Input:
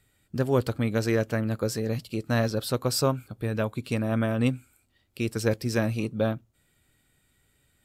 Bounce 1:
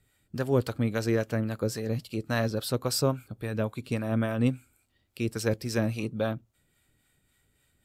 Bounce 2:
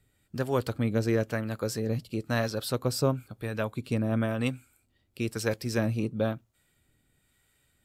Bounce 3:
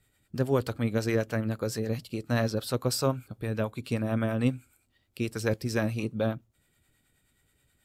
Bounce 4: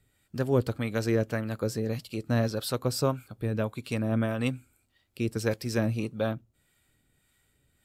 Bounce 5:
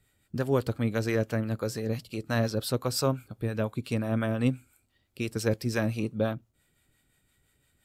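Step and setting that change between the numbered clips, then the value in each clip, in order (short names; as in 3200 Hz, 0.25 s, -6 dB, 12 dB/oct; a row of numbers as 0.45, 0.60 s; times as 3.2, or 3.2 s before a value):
harmonic tremolo, rate: 3.6, 1, 9.4, 1.7, 5.8 Hz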